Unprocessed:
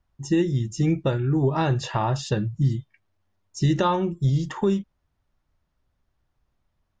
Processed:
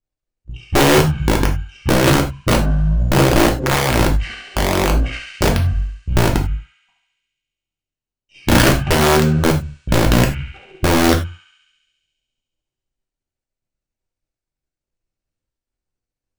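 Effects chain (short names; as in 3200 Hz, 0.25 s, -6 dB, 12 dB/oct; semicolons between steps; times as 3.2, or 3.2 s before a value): half-wave gain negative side -7 dB; bell 240 Hz +7 dB 2.7 oct; speed mistake 78 rpm record played at 33 rpm; gate -30 dBFS, range -17 dB; high shelf 3200 Hz +11.5 dB; on a send: thinning echo 69 ms, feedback 83%, high-pass 1200 Hz, level -4 dB; on the sum: wrapped overs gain 12.5 dB; non-linear reverb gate 0.12 s falling, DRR 1 dB; gain +4 dB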